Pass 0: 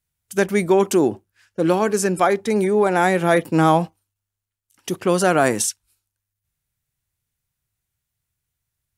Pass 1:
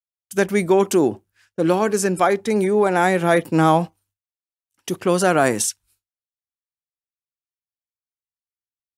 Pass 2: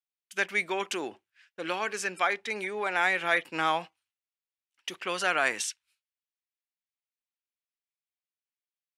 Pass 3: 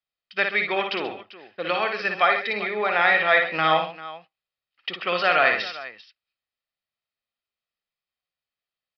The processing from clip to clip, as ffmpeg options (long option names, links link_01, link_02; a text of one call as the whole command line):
ffmpeg -i in.wav -af "agate=range=-33dB:threshold=-53dB:ratio=3:detection=peak" out.wav
ffmpeg -i in.wav -af "bandpass=frequency=2500:width_type=q:width=1.5:csg=0,volume=1.5dB" out.wav
ffmpeg -i in.wav -af "aecho=1:1:1.6:0.41,aecho=1:1:57|132|394:0.562|0.211|0.15,aresample=11025,aresample=44100,volume=5.5dB" out.wav